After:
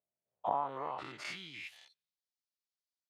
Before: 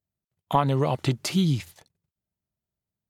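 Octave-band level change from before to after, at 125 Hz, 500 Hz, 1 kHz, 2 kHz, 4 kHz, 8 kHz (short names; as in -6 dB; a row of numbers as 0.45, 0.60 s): -33.0, -13.5, -8.5, -6.0, -13.5, -19.0 dB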